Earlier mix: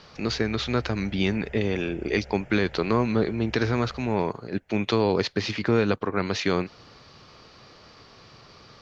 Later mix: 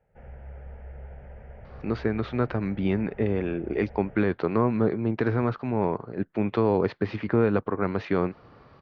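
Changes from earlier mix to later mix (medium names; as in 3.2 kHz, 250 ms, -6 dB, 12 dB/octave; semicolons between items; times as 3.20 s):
speech: entry +1.65 s; master: add low-pass 1.5 kHz 12 dB/octave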